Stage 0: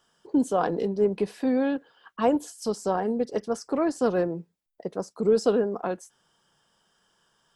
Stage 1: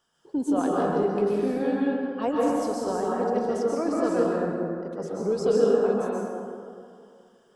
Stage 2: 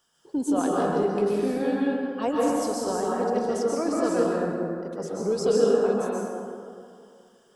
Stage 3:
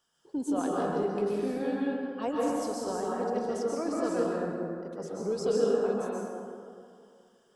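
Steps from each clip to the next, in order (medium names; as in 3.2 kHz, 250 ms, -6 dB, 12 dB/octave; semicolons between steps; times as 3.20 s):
plate-style reverb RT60 2.4 s, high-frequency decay 0.4×, pre-delay 115 ms, DRR -5 dB; trim -5.5 dB
treble shelf 3.8 kHz +8 dB
treble shelf 9 kHz -4 dB; trim -5.5 dB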